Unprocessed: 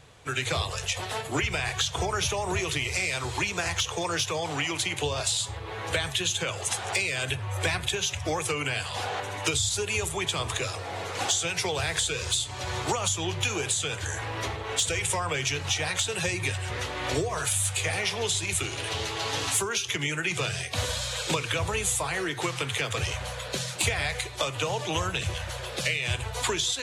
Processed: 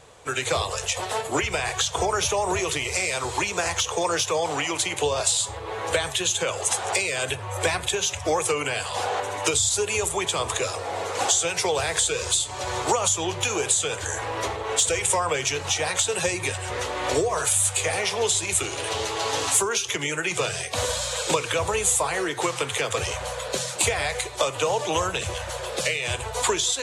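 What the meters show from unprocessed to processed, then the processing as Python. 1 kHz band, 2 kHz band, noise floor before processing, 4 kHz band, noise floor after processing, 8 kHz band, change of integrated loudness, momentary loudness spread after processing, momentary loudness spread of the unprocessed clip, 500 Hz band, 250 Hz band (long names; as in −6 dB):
+6.0 dB, +1.5 dB, −37 dBFS, +1.5 dB, −34 dBFS, +6.0 dB, +4.0 dB, 7 LU, 5 LU, +6.5 dB, +2.0 dB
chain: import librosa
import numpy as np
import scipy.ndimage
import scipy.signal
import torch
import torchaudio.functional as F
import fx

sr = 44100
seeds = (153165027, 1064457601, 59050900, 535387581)

y = fx.graphic_eq(x, sr, hz=(125, 500, 1000, 8000), db=(-4, 7, 5, 7))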